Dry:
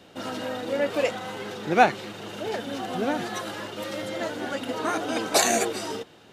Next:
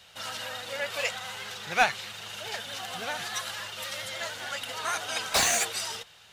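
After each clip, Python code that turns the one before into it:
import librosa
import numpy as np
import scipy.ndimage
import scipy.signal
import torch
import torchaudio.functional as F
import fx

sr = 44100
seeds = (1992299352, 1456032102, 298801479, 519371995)

y = fx.vibrato(x, sr, rate_hz=13.0, depth_cents=42.0)
y = fx.tone_stack(y, sr, knobs='10-0-10')
y = fx.slew_limit(y, sr, full_power_hz=220.0)
y = y * 10.0 ** (5.5 / 20.0)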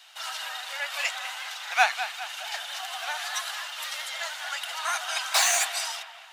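y = scipy.signal.sosfilt(scipy.signal.butter(8, 670.0, 'highpass', fs=sr, output='sos'), x)
y = fx.echo_bbd(y, sr, ms=203, stages=4096, feedback_pct=48, wet_db=-11.0)
y = y * 10.0 ** (2.0 / 20.0)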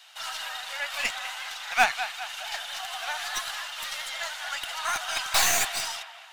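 y = fx.tracing_dist(x, sr, depth_ms=0.037)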